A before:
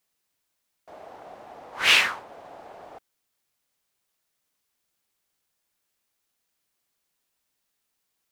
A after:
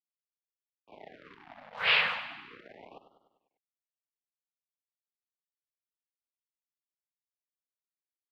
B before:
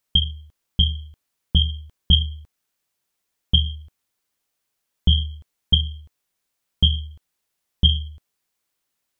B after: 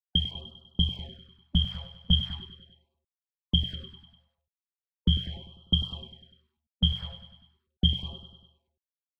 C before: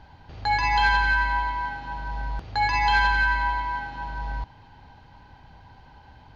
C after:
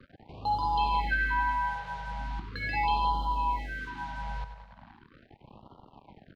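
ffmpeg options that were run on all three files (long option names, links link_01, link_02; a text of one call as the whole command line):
ffmpeg -i in.wav -filter_complex "[0:a]lowshelf=frequency=390:gain=10,aresample=11025,aresample=44100,acrusher=bits=5:mix=0:aa=0.5,acrossover=split=150 4300:gain=0.224 1 0.0891[link_01][link_02][link_03];[link_01][link_02][link_03]amix=inputs=3:normalize=0,asplit=2[link_04][link_05];[link_05]aecho=0:1:99|198|297|396|495|594:0.282|0.158|0.0884|0.0495|0.0277|0.0155[link_06];[link_04][link_06]amix=inputs=2:normalize=0,afftfilt=real='re*(1-between(b*sr/1024,290*pow(2000/290,0.5+0.5*sin(2*PI*0.39*pts/sr))/1.41,290*pow(2000/290,0.5+0.5*sin(2*PI*0.39*pts/sr))*1.41))':imag='im*(1-between(b*sr/1024,290*pow(2000/290,0.5+0.5*sin(2*PI*0.39*pts/sr))/1.41,290*pow(2000/290,0.5+0.5*sin(2*PI*0.39*pts/sr))*1.41))':win_size=1024:overlap=0.75,volume=-6dB" out.wav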